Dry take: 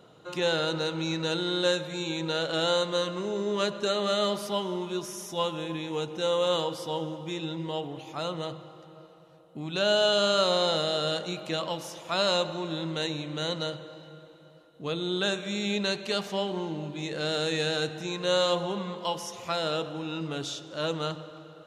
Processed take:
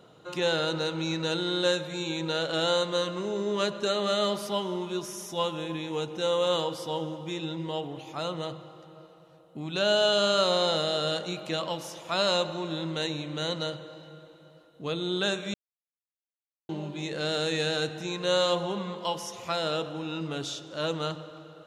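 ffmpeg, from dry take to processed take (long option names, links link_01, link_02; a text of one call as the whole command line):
ffmpeg -i in.wav -filter_complex "[0:a]asplit=3[link_01][link_02][link_03];[link_01]atrim=end=15.54,asetpts=PTS-STARTPTS,afade=type=out:start_time=15.536:duration=0.004:curve=hsin[link_04];[link_02]atrim=start=15.54:end=16.69,asetpts=PTS-STARTPTS,volume=0[link_05];[link_03]atrim=start=16.69,asetpts=PTS-STARTPTS,afade=type=in:duration=0.004:curve=hsin[link_06];[link_04][link_05][link_06]concat=n=3:v=0:a=1" out.wav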